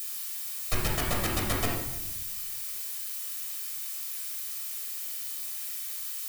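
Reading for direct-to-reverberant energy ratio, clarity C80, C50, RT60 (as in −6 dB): −3.0 dB, 5.5 dB, 2.0 dB, 0.95 s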